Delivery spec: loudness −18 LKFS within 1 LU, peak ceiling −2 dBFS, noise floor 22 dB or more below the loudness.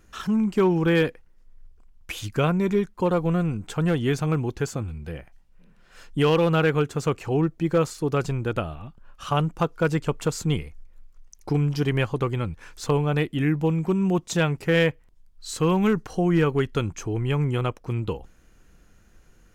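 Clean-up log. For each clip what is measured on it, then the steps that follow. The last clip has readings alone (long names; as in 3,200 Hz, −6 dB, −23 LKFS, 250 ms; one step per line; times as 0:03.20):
share of clipped samples 0.3%; peaks flattened at −13.0 dBFS; integrated loudness −24.5 LKFS; sample peak −13.0 dBFS; target loudness −18.0 LKFS
→ clipped peaks rebuilt −13 dBFS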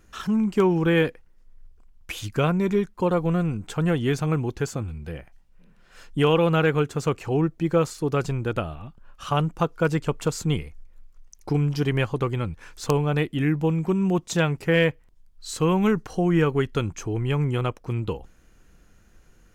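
share of clipped samples 0.0%; integrated loudness −24.5 LKFS; sample peak −4.0 dBFS; target loudness −18.0 LKFS
→ level +6.5 dB
brickwall limiter −2 dBFS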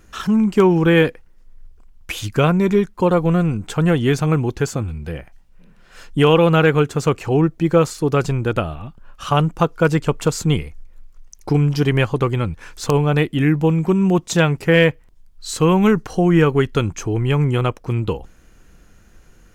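integrated loudness −18.0 LKFS; sample peak −2.0 dBFS; background noise floor −49 dBFS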